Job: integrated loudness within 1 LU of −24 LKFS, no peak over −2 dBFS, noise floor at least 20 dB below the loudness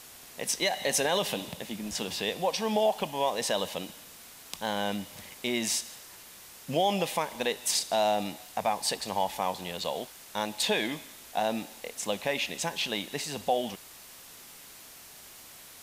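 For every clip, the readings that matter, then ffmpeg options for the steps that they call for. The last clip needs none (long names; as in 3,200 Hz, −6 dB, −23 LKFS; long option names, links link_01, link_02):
background noise floor −50 dBFS; target noise floor −51 dBFS; integrated loudness −30.5 LKFS; sample peak −15.0 dBFS; target loudness −24.0 LKFS
→ -af "afftdn=noise_reduction=6:noise_floor=-50"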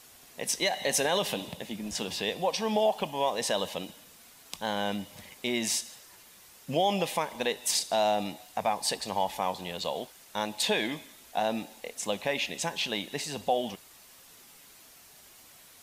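background noise floor −55 dBFS; integrated loudness −30.5 LKFS; sample peak −15.0 dBFS; target loudness −24.0 LKFS
→ -af "volume=6.5dB"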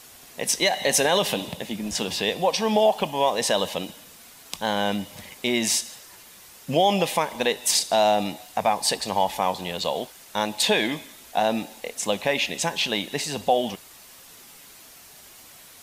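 integrated loudness −24.0 LKFS; sample peak −8.5 dBFS; background noise floor −48 dBFS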